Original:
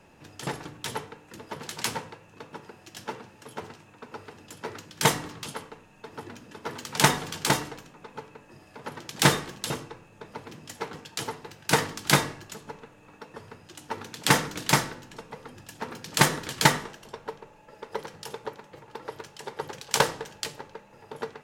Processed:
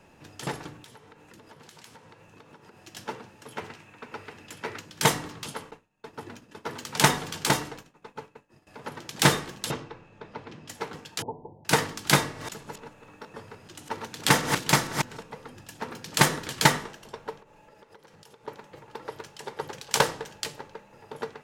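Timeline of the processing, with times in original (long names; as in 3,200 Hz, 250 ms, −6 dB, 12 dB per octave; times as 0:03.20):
0:00.83–0:02.78: downward compressor 8 to 1, threshold −47 dBFS
0:03.52–0:04.81: parametric band 2,200 Hz +6.5 dB 1.1 octaves
0:05.71–0:08.67: downward expander −44 dBFS
0:09.71–0:10.68: low-pass filter 4,500 Hz
0:11.22–0:11.65: Butterworth low-pass 970 Hz 96 dB per octave
0:12.19–0:15.23: delay that plays each chunk backwards 149 ms, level −6 dB
0:17.40–0:18.48: downward compressor, threshold −50 dBFS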